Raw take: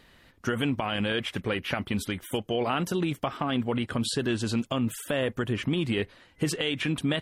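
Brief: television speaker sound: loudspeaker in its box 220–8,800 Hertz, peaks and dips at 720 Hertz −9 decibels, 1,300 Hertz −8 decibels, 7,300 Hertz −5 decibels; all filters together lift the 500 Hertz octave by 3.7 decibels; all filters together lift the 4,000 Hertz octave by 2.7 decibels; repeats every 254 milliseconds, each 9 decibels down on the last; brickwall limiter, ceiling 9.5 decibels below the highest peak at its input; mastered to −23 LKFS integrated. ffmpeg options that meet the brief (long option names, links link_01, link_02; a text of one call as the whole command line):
ffmpeg -i in.wav -af "equalizer=frequency=500:width_type=o:gain=6,equalizer=frequency=4000:width_type=o:gain=4,alimiter=limit=-19.5dB:level=0:latency=1,highpass=frequency=220:width=0.5412,highpass=frequency=220:width=1.3066,equalizer=frequency=720:width_type=q:width=4:gain=-9,equalizer=frequency=1300:width_type=q:width=4:gain=-8,equalizer=frequency=7300:width_type=q:width=4:gain=-5,lowpass=frequency=8800:width=0.5412,lowpass=frequency=8800:width=1.3066,aecho=1:1:254|508|762|1016:0.355|0.124|0.0435|0.0152,volume=8dB" out.wav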